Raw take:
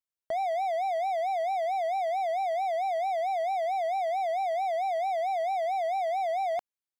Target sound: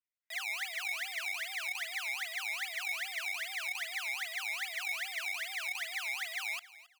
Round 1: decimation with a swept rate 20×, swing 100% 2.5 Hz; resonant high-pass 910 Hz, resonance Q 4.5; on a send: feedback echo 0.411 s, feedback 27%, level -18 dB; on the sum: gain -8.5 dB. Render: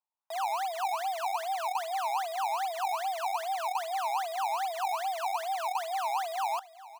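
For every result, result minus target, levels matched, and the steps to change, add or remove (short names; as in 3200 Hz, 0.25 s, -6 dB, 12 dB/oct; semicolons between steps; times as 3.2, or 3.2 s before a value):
1000 Hz band +17.0 dB; echo 0.14 s late
change: resonant high-pass 2000 Hz, resonance Q 4.5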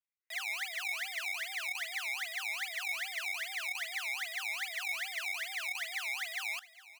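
echo 0.14 s late
change: feedback echo 0.271 s, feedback 27%, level -18 dB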